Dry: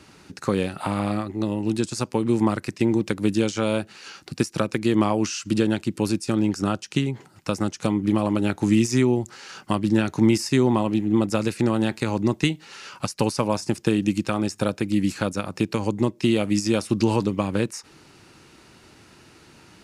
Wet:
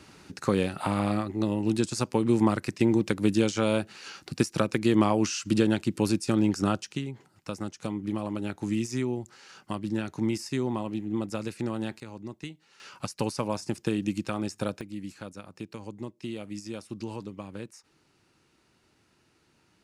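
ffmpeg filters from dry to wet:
-af "asetnsamples=n=441:p=0,asendcmd='6.92 volume volume -10dB;12 volume volume -18dB;12.8 volume volume -7dB;14.81 volume volume -16dB',volume=0.794"

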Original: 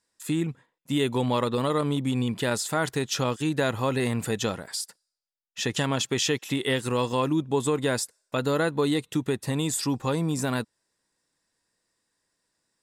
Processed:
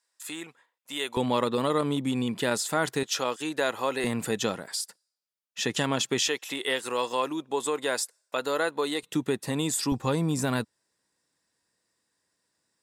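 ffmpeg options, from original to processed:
-af "asetnsamples=n=441:p=0,asendcmd='1.17 highpass f 170;3.03 highpass f 400;4.04 highpass f 160;6.28 highpass f 460;9.03 highpass f 170;9.92 highpass f 63',highpass=680"

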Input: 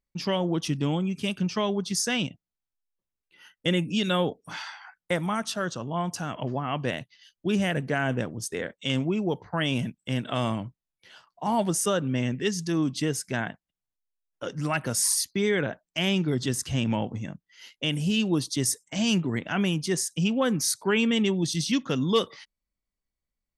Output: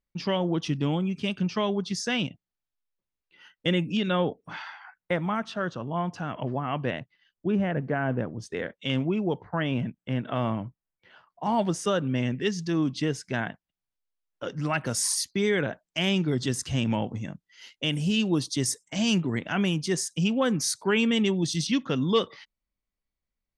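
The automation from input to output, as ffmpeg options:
-af "asetnsamples=n=441:p=0,asendcmd='3.97 lowpass f 2800;7 lowpass f 1500;8.39 lowpass f 3500;9.42 lowpass f 2100;11.43 lowpass f 4900;14.85 lowpass f 8800;21.67 lowpass f 4400',lowpass=4700"

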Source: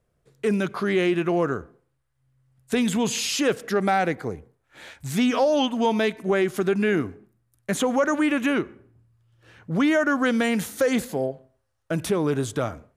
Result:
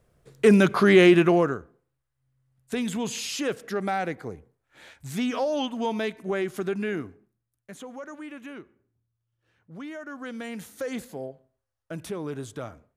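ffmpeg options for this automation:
-af "volume=5.31,afade=t=out:st=1.14:d=0.45:silence=0.237137,afade=t=out:st=6.69:d=1.03:silence=0.251189,afade=t=in:st=10.02:d=0.93:silence=0.398107"

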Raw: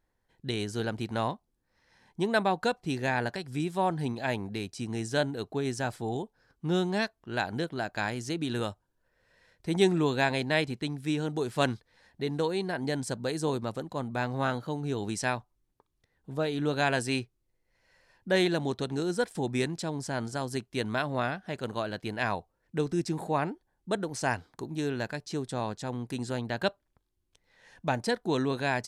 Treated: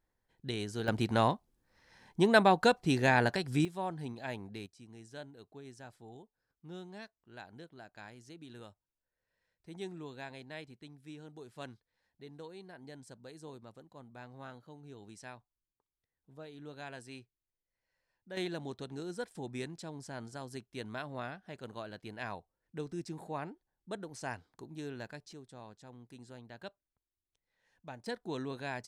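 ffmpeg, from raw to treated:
-af "asetnsamples=n=441:p=0,asendcmd='0.88 volume volume 2.5dB;3.65 volume volume -9.5dB;4.66 volume volume -19dB;18.37 volume volume -11dB;25.33 volume volume -18dB;28.06 volume volume -10.5dB',volume=0.562"

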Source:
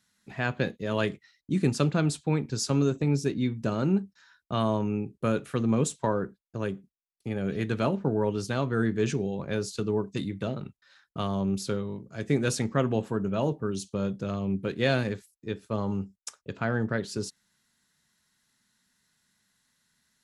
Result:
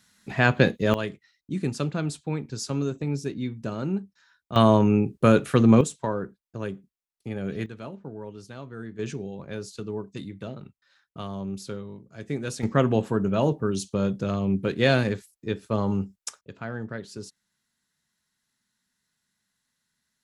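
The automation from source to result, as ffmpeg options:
-af "asetnsamples=n=441:p=0,asendcmd='0.94 volume volume -3dB;4.56 volume volume 9dB;5.81 volume volume -1dB;7.66 volume volume -12dB;8.99 volume volume -5dB;12.63 volume volume 4.5dB;16.41 volume volume -6dB',volume=2.82"

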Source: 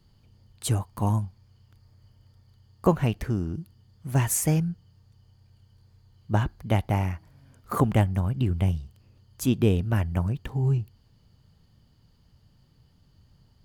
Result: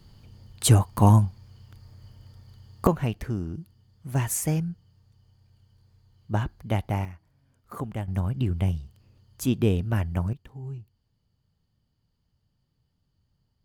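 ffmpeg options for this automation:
-af "asetnsamples=n=441:p=0,asendcmd='2.87 volume volume -2.5dB;7.05 volume volume -11dB;8.08 volume volume -1dB;10.33 volume volume -13dB',volume=2.51"

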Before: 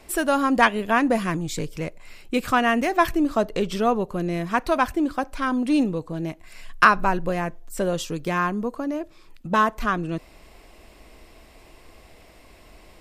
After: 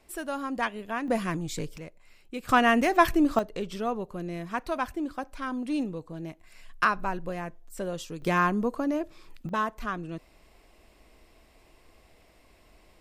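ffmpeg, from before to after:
-af "asetnsamples=n=441:p=0,asendcmd='1.08 volume volume -5dB;1.78 volume volume -13dB;2.49 volume volume -1dB;3.39 volume volume -9dB;8.22 volume volume -0.5dB;9.49 volume volume -9dB',volume=0.251"

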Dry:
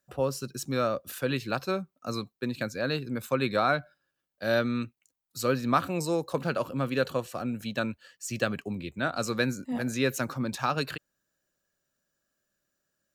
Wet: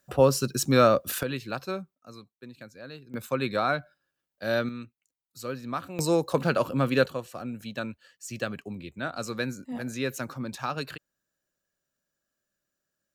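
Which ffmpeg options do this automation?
-af "asetnsamples=n=441:p=0,asendcmd='1.23 volume volume -3dB;1.95 volume volume -13.5dB;3.14 volume volume -1dB;4.69 volume volume -8dB;5.99 volume volume 4.5dB;7.06 volume volume -3.5dB',volume=2.66"

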